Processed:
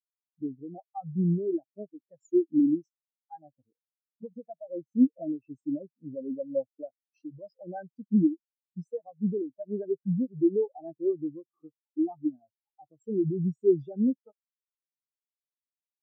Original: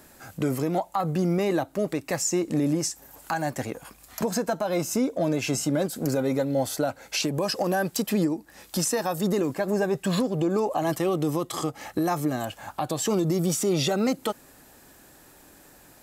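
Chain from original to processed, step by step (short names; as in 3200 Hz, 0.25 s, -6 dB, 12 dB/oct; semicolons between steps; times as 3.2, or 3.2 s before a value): spectral expander 4:1; gain +3.5 dB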